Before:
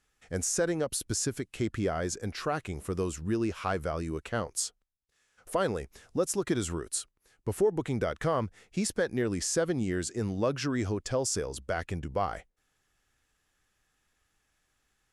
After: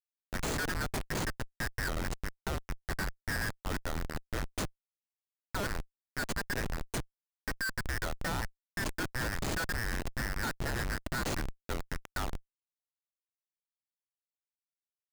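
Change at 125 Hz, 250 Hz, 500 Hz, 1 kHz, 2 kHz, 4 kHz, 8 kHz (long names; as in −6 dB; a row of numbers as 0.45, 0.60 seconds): −4.0, −8.5, −12.0, −3.5, +4.5, −0.5, −9.0 decibels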